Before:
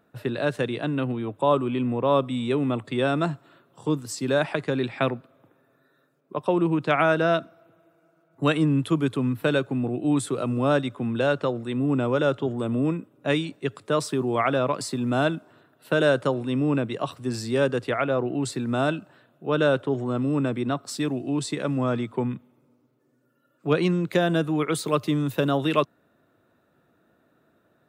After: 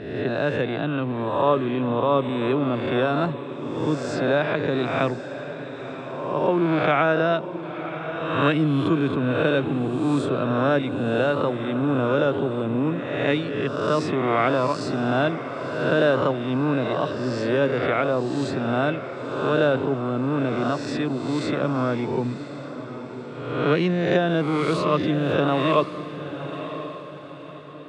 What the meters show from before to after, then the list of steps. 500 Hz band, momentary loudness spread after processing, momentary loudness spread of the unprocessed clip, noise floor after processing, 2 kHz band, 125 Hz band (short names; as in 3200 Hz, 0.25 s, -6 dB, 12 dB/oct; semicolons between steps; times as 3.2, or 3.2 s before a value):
+2.5 dB, 12 LU, 6 LU, -36 dBFS, +3.0 dB, +1.0 dB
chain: spectral swells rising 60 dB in 1.07 s; air absorption 140 m; diffused feedback echo 1.027 s, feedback 41%, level -11 dB